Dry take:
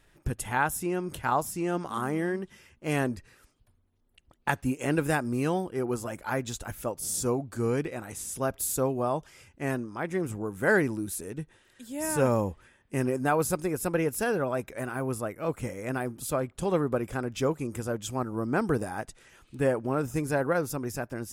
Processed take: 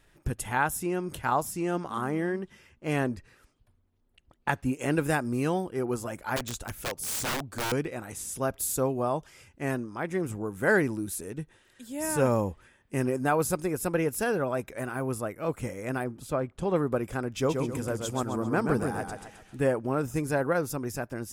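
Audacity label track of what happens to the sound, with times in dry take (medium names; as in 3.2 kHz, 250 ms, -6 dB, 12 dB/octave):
1.800000	4.730000	treble shelf 5.5 kHz -6.5 dB
6.360000	7.720000	integer overflow gain 25.5 dB
16.040000	16.760000	low-pass 2.6 kHz 6 dB/octave
17.300000	19.610000	modulated delay 132 ms, feedback 40%, depth 74 cents, level -5 dB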